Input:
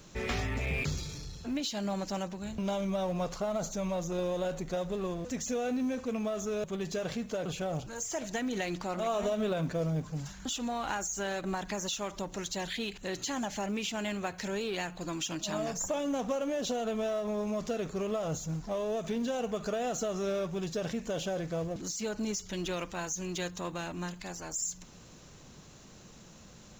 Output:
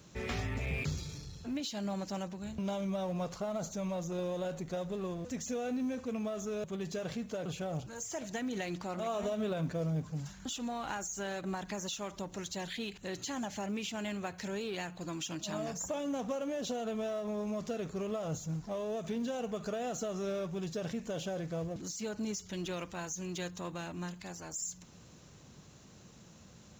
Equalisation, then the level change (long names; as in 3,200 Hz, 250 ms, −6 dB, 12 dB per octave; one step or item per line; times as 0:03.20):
high-pass filter 81 Hz 12 dB per octave
low-shelf EQ 120 Hz +9 dB
−4.5 dB